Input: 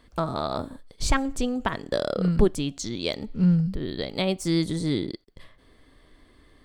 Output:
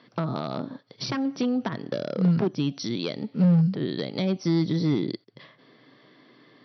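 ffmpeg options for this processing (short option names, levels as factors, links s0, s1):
-filter_complex "[0:a]asoftclip=type=hard:threshold=0.106,afftfilt=real='re*between(b*sr/4096,110,5900)':imag='im*between(b*sr/4096,110,5900)':win_size=4096:overlap=0.75,acrossover=split=330[s0][s1];[s1]acompressor=threshold=0.0178:ratio=4[s2];[s0][s2]amix=inputs=2:normalize=0,volume=1.58"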